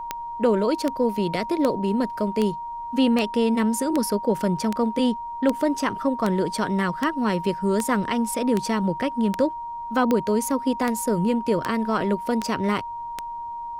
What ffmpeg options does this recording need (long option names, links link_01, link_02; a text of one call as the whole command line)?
ffmpeg -i in.wav -af "adeclick=threshold=4,bandreject=frequency=940:width=30,agate=range=-21dB:threshold=-25dB" out.wav